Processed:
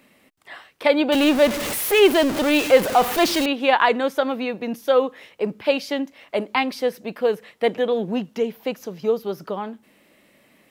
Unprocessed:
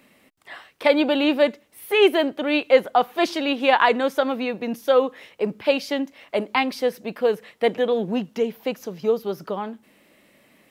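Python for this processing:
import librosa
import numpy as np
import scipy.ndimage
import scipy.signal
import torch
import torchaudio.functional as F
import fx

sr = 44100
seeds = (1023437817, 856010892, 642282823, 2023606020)

y = fx.zero_step(x, sr, step_db=-20.5, at=(1.12, 3.46))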